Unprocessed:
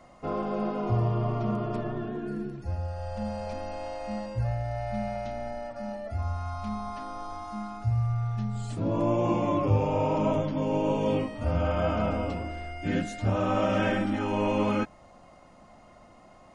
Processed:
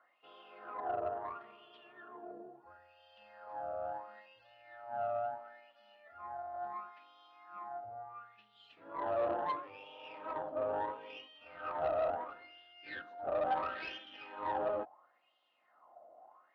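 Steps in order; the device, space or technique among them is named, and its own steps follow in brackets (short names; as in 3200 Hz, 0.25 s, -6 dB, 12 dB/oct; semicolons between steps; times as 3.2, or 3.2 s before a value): wah-wah guitar rig (wah 0.73 Hz 630–3200 Hz, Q 6.7; tube stage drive 35 dB, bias 0.75; speaker cabinet 90–4300 Hz, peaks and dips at 120 Hz -10 dB, 200 Hz -8 dB, 330 Hz +4 dB, 470 Hz +4 dB, 780 Hz +3 dB, 2200 Hz -8 dB); gain +5.5 dB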